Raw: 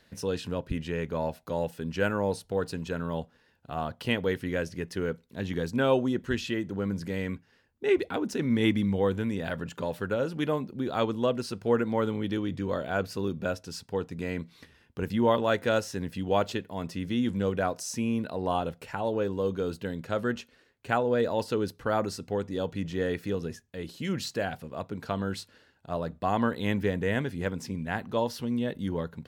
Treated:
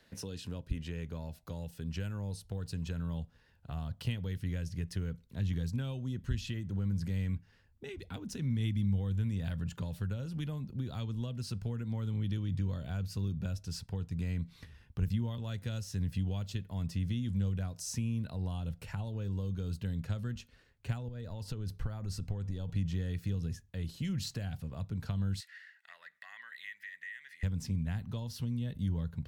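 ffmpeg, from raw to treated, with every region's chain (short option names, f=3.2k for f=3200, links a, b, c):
-filter_complex "[0:a]asettb=1/sr,asplit=3[a][b][c];[a]atrim=end=21.084[d];[b]atrim=start=21.08:end=22.69,asetpts=PTS-STARTPTS,afade=t=in:d=0.004:c=qsin,afade=t=out:st=1.606:d=0.004:c=qsin,acompressor=threshold=-37dB:ratio=3:attack=3.2:release=140:knee=1:detection=peak,lowshelf=f=67:g=11[e];[c]atrim=start=22.686[f];[d][e]acrossfade=d=0.004:c1=hsin:c2=qsin[g];[g][f]acrossfade=d=0.004:c1=qsin:c2=hsin,asettb=1/sr,asplit=3[h][i][j];[h]atrim=end=25.404[k];[i]atrim=start=25.4:end=27.43,asetpts=PTS-STARTPTS,afade=t=in:d=0.004:c=qsin,afade=t=out:st=2.026:d=0.004:c=qsin,acompressor=threshold=-42dB:ratio=2.5:attack=3.2:release=140:knee=1:detection=peak,highpass=f=1.9k:t=q:w=15[l];[j]atrim=start=27.426[m];[k][l]acrossfade=d=0.004:c1=hsin:c2=qsin[n];[n][m]acrossfade=d=0.004:c1=qsin:c2=hsin,acompressor=threshold=-31dB:ratio=2,asubboost=boost=6.5:cutoff=120,acrossover=split=240|3000[o][p][q];[p]acompressor=threshold=-45dB:ratio=6[r];[o][r][q]amix=inputs=3:normalize=0,volume=-3dB"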